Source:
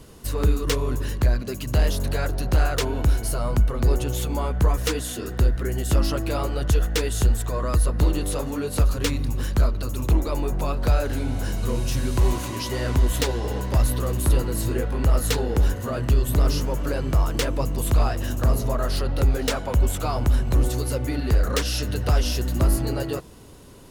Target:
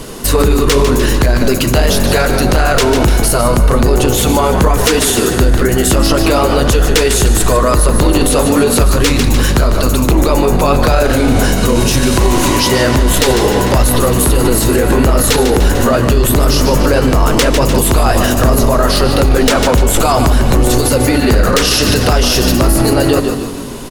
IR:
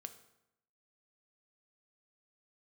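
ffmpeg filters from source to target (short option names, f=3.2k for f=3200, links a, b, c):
-filter_complex "[0:a]equalizer=f=76:t=o:w=1.4:g=-12.5,asplit=6[a][b][c][d][e][f];[b]adelay=149,afreqshift=-48,volume=-10.5dB[g];[c]adelay=298,afreqshift=-96,volume=-16.9dB[h];[d]adelay=447,afreqshift=-144,volume=-23.3dB[i];[e]adelay=596,afreqshift=-192,volume=-29.6dB[j];[f]adelay=745,afreqshift=-240,volume=-36dB[k];[a][g][h][i][j][k]amix=inputs=6:normalize=0,asplit=2[l][m];[1:a]atrim=start_sample=2205,asetrate=24255,aresample=44100[n];[m][n]afir=irnorm=-1:irlink=0,volume=1dB[o];[l][o]amix=inputs=2:normalize=0,alimiter=level_in=16.5dB:limit=-1dB:release=50:level=0:latency=1,volume=-1dB"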